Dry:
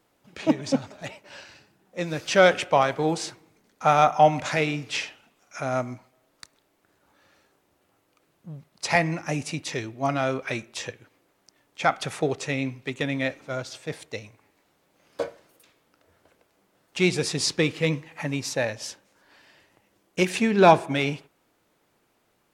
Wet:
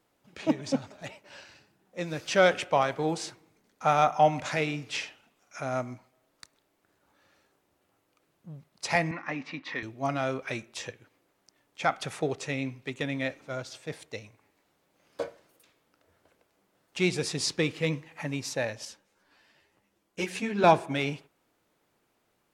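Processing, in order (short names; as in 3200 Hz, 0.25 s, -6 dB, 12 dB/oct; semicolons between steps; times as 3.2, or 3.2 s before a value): 9.11–9.83 speaker cabinet 250–3900 Hz, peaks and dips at 260 Hz +5 dB, 400 Hz -8 dB, 640 Hz -5 dB, 1100 Hz +9 dB, 1900 Hz +8 dB, 2900 Hz -3 dB; 18.85–20.64 ensemble effect; gain -4.5 dB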